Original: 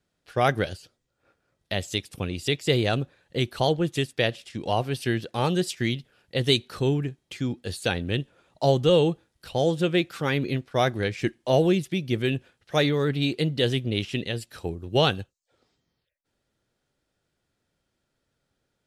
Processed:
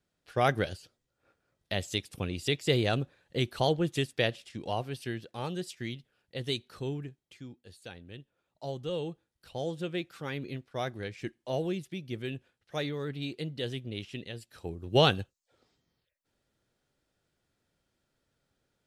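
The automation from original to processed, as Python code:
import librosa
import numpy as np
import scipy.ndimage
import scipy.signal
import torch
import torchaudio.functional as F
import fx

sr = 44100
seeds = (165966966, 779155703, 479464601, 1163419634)

y = fx.gain(x, sr, db=fx.line((4.21, -4.0), (5.25, -11.5), (7.05, -11.5), (7.62, -20.0), (8.16, -20.0), (9.52, -11.5), (14.47, -11.5), (14.97, -1.5)))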